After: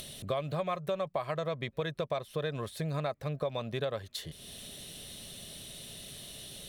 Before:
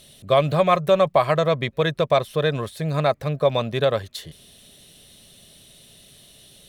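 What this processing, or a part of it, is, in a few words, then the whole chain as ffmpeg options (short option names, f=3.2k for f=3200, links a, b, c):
upward and downward compression: -af "acompressor=mode=upward:threshold=-33dB:ratio=2.5,acompressor=threshold=-28dB:ratio=4,volume=-4dB"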